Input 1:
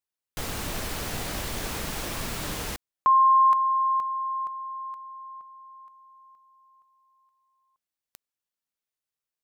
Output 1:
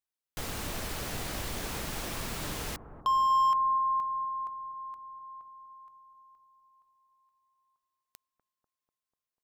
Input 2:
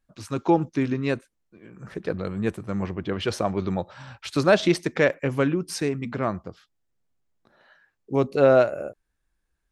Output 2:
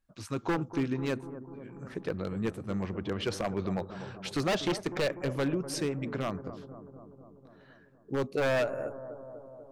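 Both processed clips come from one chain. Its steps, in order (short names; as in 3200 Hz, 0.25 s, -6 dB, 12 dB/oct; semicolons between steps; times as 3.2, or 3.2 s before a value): in parallel at -2.5 dB: compressor 5:1, threshold -28 dBFS; on the sum: wavefolder -13.5 dBFS; analogue delay 0.246 s, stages 2048, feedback 69%, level -12.5 dB; gain -8.5 dB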